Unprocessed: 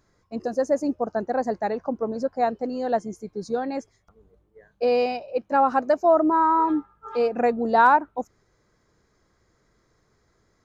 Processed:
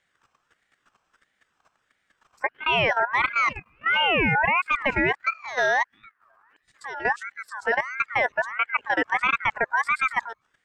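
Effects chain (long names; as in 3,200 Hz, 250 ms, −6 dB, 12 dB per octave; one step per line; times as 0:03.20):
played backwards from end to start
output level in coarse steps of 13 dB
ring modulator whose carrier an LFO sweeps 1,500 Hz, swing 25%, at 1.5 Hz
level +8 dB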